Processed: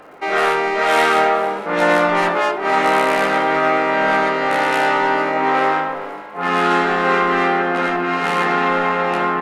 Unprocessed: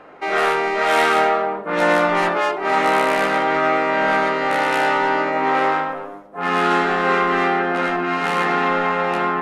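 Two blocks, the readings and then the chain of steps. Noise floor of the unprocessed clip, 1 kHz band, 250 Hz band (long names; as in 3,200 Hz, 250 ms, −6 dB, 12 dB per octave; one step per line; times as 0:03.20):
−34 dBFS, +1.5 dB, +1.5 dB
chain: surface crackle 150 per second −47 dBFS
echo with shifted repeats 455 ms, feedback 54%, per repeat +54 Hz, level −18 dB
level +1.5 dB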